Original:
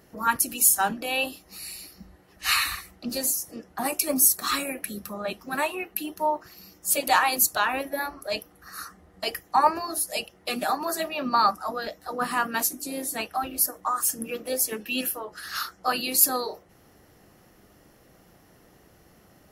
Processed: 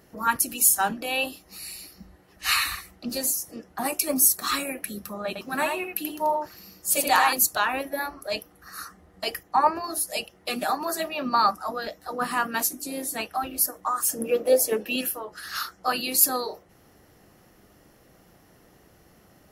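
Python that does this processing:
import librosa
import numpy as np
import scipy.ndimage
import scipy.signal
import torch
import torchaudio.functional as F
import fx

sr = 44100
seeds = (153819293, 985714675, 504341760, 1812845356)

y = fx.echo_single(x, sr, ms=84, db=-4.5, at=(5.27, 7.33))
y = fx.high_shelf(y, sr, hz=3700.0, db=-8.5, at=(9.43, 9.84))
y = fx.peak_eq(y, sr, hz=540.0, db=11.5, octaves=1.4, at=(14.11, 14.96))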